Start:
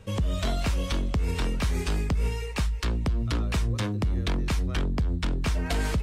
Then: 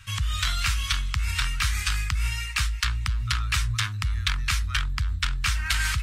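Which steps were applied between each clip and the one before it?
FFT filter 120 Hz 0 dB, 180 Hz -16 dB, 510 Hz -30 dB, 1.3 kHz +9 dB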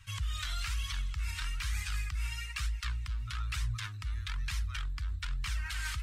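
peak limiter -17.5 dBFS, peak gain reduction 9 dB; flange 1.1 Hz, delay 0.9 ms, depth 2.6 ms, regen +31%; trim -5.5 dB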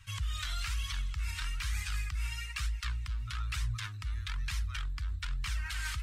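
no audible change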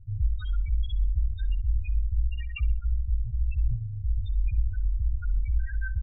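octave divider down 2 oct, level -4 dB; loudest bins only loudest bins 4; feedback delay 64 ms, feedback 35%, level -21 dB; trim +9 dB

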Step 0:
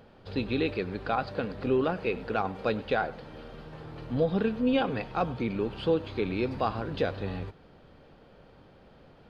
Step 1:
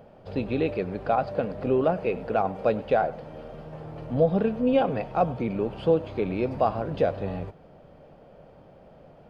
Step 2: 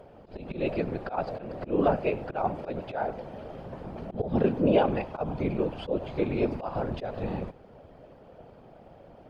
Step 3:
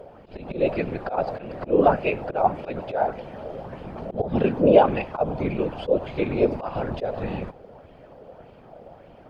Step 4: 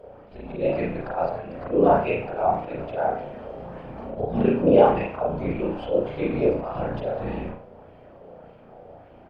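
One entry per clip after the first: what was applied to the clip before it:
fifteen-band graphic EQ 160 Hz +5 dB, 630 Hz +10 dB, 1.6 kHz -3 dB, 4 kHz -8 dB
slow attack 174 ms; whisper effect
sweeping bell 1.7 Hz 470–2900 Hz +8 dB; trim +2.5 dB
speakerphone echo 90 ms, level -15 dB; reverberation, pre-delay 34 ms, DRR -4.5 dB; trim -7 dB

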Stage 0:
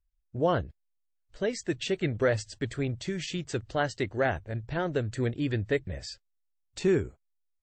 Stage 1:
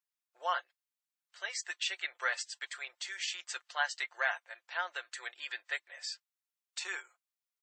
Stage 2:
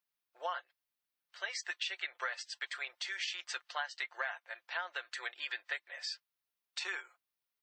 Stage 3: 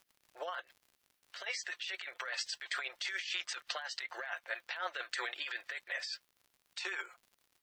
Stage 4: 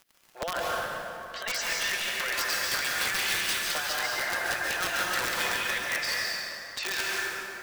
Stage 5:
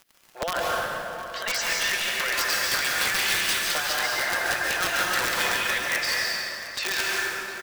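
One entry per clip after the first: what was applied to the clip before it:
inverse Chebyshev high-pass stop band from 210 Hz, stop band 70 dB; comb 5.7 ms, depth 52%
peaking EQ 7.4 kHz -11 dB 0.52 oct; compression 6:1, threshold -38 dBFS, peak gain reduction 12 dB; trim +3.5 dB
rotary cabinet horn 6.7 Hz; compressor with a negative ratio -47 dBFS, ratio -1; crackle 74 per s -59 dBFS; trim +7.5 dB
in parallel at +3 dB: peak limiter -28.5 dBFS, peak gain reduction 6.5 dB; on the sum: integer overflow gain 23.5 dB; plate-style reverb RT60 3.1 s, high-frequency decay 0.55×, pre-delay 120 ms, DRR -4.5 dB
delay 709 ms -16 dB; trim +4 dB

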